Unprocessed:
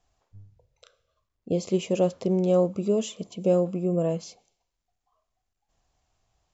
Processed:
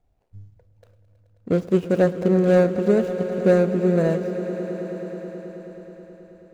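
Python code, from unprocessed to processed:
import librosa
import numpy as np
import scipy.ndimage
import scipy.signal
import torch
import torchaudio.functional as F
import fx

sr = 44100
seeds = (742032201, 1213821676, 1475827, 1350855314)

y = scipy.signal.medfilt(x, 41)
y = fx.echo_swell(y, sr, ms=107, loudest=5, wet_db=-16.0)
y = y * librosa.db_to_amplitude(6.0)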